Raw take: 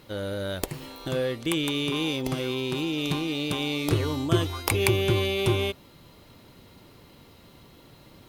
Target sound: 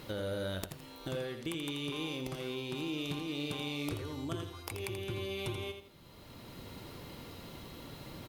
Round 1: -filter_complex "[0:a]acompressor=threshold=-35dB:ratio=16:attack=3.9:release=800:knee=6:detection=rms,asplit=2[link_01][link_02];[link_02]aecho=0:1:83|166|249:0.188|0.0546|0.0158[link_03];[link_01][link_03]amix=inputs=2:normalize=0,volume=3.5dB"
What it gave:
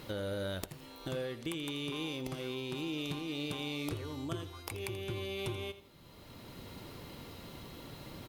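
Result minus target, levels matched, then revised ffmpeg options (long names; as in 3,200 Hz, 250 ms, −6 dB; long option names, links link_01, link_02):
echo-to-direct −6.5 dB
-filter_complex "[0:a]acompressor=threshold=-35dB:ratio=16:attack=3.9:release=800:knee=6:detection=rms,asplit=2[link_01][link_02];[link_02]aecho=0:1:83|166|249:0.398|0.115|0.0335[link_03];[link_01][link_03]amix=inputs=2:normalize=0,volume=3.5dB"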